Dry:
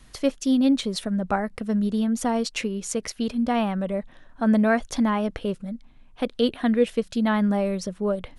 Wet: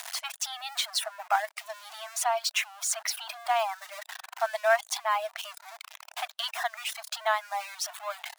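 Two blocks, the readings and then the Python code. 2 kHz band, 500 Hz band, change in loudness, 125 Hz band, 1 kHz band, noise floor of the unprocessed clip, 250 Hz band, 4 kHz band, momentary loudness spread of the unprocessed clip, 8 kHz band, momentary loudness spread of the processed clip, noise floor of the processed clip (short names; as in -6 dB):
+1.5 dB, -7.5 dB, -6.0 dB, under -40 dB, +1.0 dB, -52 dBFS, under -40 dB, +2.5 dB, 9 LU, +4.0 dB, 14 LU, -65 dBFS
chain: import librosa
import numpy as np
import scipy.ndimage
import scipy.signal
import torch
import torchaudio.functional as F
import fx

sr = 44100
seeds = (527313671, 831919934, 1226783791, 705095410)

y = x + 0.5 * 10.0 ** (-29.0 / 20.0) * np.sign(x)
y = fx.brickwall_highpass(y, sr, low_hz=620.0)
y = fx.dereverb_blind(y, sr, rt60_s=1.0)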